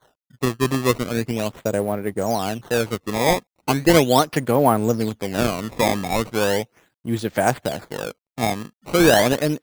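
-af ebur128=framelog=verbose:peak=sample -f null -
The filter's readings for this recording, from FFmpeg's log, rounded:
Integrated loudness:
  I:         -20.9 LUFS
  Threshold: -31.2 LUFS
Loudness range:
  LRA:         4.2 LU
  Threshold: -41.3 LUFS
  LRA low:   -23.8 LUFS
  LRA high:  -19.6 LUFS
Sample peak:
  Peak:       -1.7 dBFS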